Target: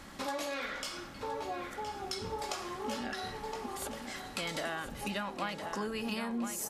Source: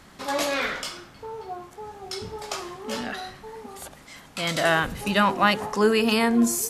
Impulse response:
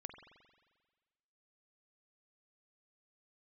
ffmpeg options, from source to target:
-filter_complex "[0:a]aecho=1:1:3.6:0.31,acompressor=threshold=0.0178:ratio=6,asplit=2[s0][s1];[s1]adelay=1017,lowpass=f=4400:p=1,volume=0.447,asplit=2[s2][s3];[s3]adelay=1017,lowpass=f=4400:p=1,volume=0.36,asplit=2[s4][s5];[s5]adelay=1017,lowpass=f=4400:p=1,volume=0.36,asplit=2[s6][s7];[s7]adelay=1017,lowpass=f=4400:p=1,volume=0.36[s8];[s0][s2][s4][s6][s8]amix=inputs=5:normalize=0"

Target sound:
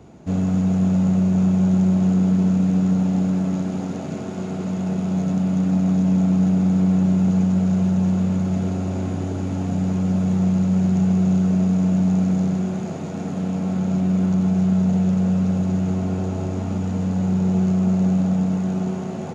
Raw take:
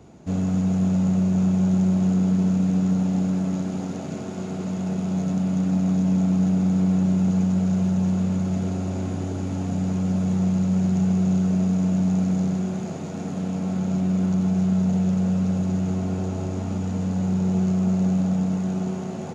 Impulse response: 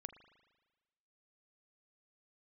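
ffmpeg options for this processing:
-filter_complex "[0:a]asplit=2[s0][s1];[1:a]atrim=start_sample=2205,lowpass=4500[s2];[s1][s2]afir=irnorm=-1:irlink=0,volume=0.708[s3];[s0][s3]amix=inputs=2:normalize=0"

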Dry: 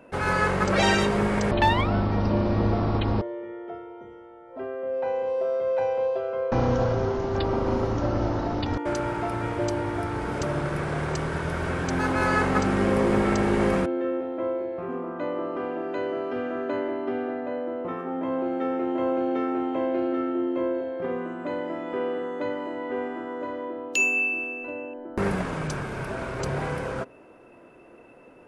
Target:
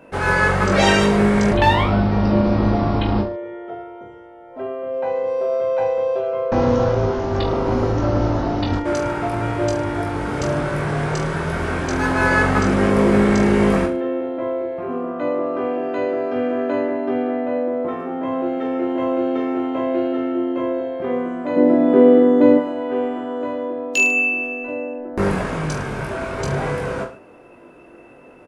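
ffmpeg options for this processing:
-filter_complex "[0:a]asettb=1/sr,asplit=3[s0][s1][s2];[s0]atrim=end=21.564[s3];[s1]atrim=start=21.56:end=22.58,asetpts=PTS-STARTPTS,afade=t=in:d=0.004:c=qsin,afade=t=out:st=1.016:d=0.004:c=qsin,equalizer=f=250:w=0.63:g=14.5[s4];[s2]atrim=start=22.576[s5];[s3][s4]acrossfade=d=0.004:c1=hsin:c2=qsin[s6];[s6][s5]acrossfade=d=0.004:c1=qsin:c2=hsin,aecho=1:1:20|44|72.8|107.4|148.8:0.631|0.398|0.251|0.158|0.1,volume=1.5"

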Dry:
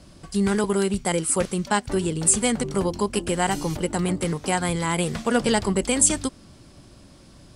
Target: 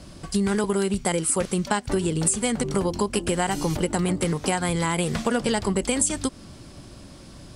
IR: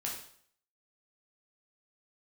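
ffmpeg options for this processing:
-af "acompressor=threshold=0.0562:ratio=6,volume=1.78"

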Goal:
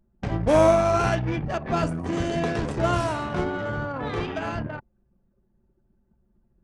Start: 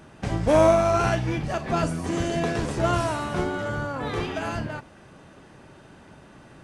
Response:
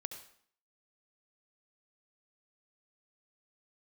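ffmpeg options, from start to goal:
-af "anlmdn=10"

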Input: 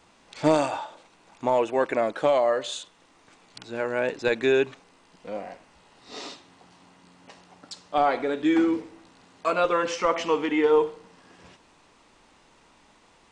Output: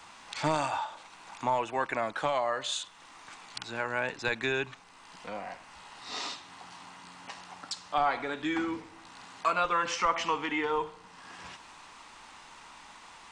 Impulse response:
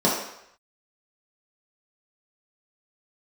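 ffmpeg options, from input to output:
-filter_complex "[0:a]acrossover=split=160[s0][s1];[s1]acompressor=threshold=0.00316:ratio=1.5[s2];[s0][s2]amix=inputs=2:normalize=0,lowshelf=f=690:t=q:w=1.5:g=-8,volume=2.51"

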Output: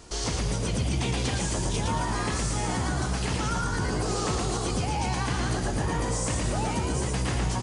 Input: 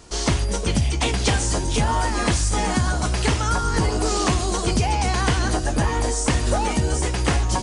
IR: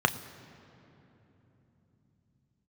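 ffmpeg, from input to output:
-filter_complex "[0:a]alimiter=limit=0.112:level=0:latency=1:release=181,asplit=2[s0][s1];[s1]asplit=6[s2][s3][s4][s5][s6][s7];[s2]adelay=114,afreqshift=61,volume=0.708[s8];[s3]adelay=228,afreqshift=122,volume=0.347[s9];[s4]adelay=342,afreqshift=183,volume=0.17[s10];[s5]adelay=456,afreqshift=244,volume=0.0832[s11];[s6]adelay=570,afreqshift=305,volume=0.0407[s12];[s7]adelay=684,afreqshift=366,volume=0.02[s13];[s8][s9][s10][s11][s12][s13]amix=inputs=6:normalize=0[s14];[s0][s14]amix=inputs=2:normalize=0,volume=0.794"

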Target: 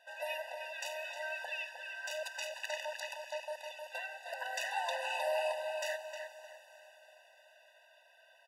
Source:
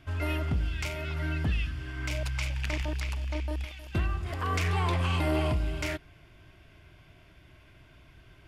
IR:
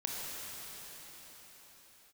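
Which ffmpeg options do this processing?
-filter_complex "[0:a]asplit=2[s0][s1];[s1]adelay=309,lowpass=f=3400:p=1,volume=0.501,asplit=2[s2][s3];[s3]adelay=309,lowpass=f=3400:p=1,volume=0.32,asplit=2[s4][s5];[s5]adelay=309,lowpass=f=3400:p=1,volume=0.32,asplit=2[s6][s7];[s7]adelay=309,lowpass=f=3400:p=1,volume=0.32[s8];[s0][s2][s4][s6][s8]amix=inputs=5:normalize=0,asplit=2[s9][s10];[1:a]atrim=start_sample=2205,highshelf=f=7100:g=10[s11];[s10][s11]afir=irnorm=-1:irlink=0,volume=0.141[s12];[s9][s12]amix=inputs=2:normalize=0,afftfilt=real='re*eq(mod(floor(b*sr/1024/500),2),1)':imag='im*eq(mod(floor(b*sr/1024/500),2),1)':win_size=1024:overlap=0.75,volume=0.841"

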